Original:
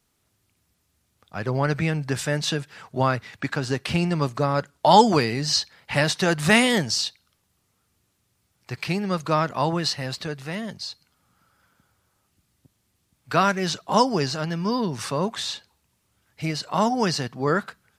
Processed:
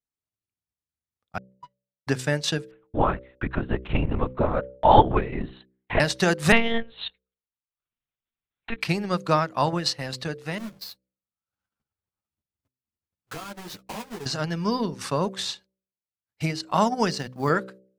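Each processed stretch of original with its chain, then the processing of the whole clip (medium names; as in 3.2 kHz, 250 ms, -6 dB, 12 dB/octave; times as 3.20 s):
1.38–2.07 s: feedback comb 980 Hz, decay 0.34 s, mix 100% + small samples zeroed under -45 dBFS + distance through air 160 m
2.71–6.00 s: low-pass 1.8 kHz 6 dB/octave + LPC vocoder at 8 kHz whisper
6.52–8.81 s: monotone LPC vocoder at 8 kHz 230 Hz + tape noise reduction on one side only encoder only
10.58–14.26 s: square wave that keeps the level + compression 5:1, threshold -32 dBFS + three-phase chorus
17.10–17.50 s: dynamic bell 420 Hz, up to -4 dB, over -36 dBFS, Q 1.6 + short-mantissa float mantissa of 4-bit
whole clip: gate -42 dBFS, range -26 dB; transient shaper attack +4 dB, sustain -11 dB; de-hum 63.81 Hz, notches 9; trim -1 dB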